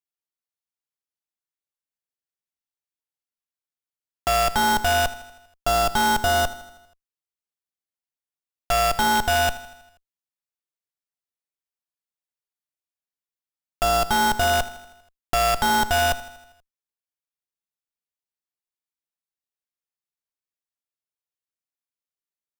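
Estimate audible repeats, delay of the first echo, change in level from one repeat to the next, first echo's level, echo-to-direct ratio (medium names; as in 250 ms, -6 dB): 5, 80 ms, -4.5 dB, -16.0 dB, -14.0 dB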